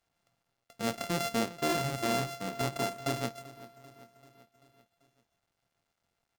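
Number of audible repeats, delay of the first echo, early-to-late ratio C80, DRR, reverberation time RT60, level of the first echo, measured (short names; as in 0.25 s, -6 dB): 4, 0.389 s, none, none, none, -19.0 dB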